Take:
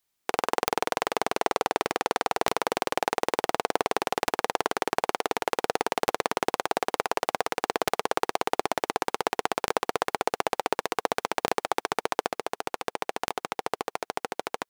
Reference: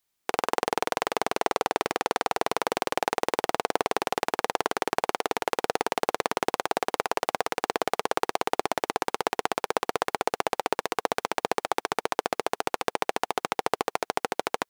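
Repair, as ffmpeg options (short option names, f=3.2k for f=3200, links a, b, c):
-af "adeclick=t=4,asetnsamples=n=441:p=0,asendcmd='12.3 volume volume 4dB',volume=0dB"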